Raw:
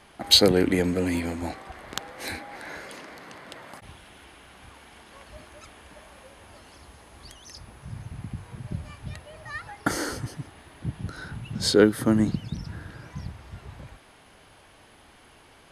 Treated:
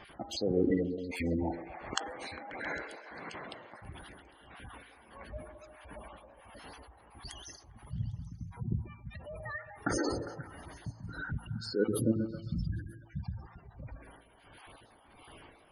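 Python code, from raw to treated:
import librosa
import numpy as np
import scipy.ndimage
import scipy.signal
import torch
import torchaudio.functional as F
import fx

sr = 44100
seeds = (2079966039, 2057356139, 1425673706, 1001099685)

p1 = fx.spec_dropout(x, sr, seeds[0], share_pct=21)
p2 = fx.dispersion(p1, sr, late='lows', ms=76.0, hz=2400.0, at=(7.56, 8.7))
p3 = fx.over_compress(p2, sr, threshold_db=-32.0, ratio=-1.0)
p4 = p2 + F.gain(torch.from_numpy(p3), 0.0).numpy()
p5 = p4 * (1.0 - 0.76 / 2.0 + 0.76 / 2.0 * np.cos(2.0 * np.pi * 1.5 * (np.arange(len(p4)) / sr)))
p6 = fx.comb_fb(p5, sr, f0_hz=56.0, decay_s=0.94, harmonics='all', damping=0.0, mix_pct=60)
p7 = fx.spec_gate(p6, sr, threshold_db=-15, keep='strong')
y = p7 + fx.echo_stepped(p7, sr, ms=134, hz=430.0, octaves=0.7, feedback_pct=70, wet_db=-6.5, dry=0)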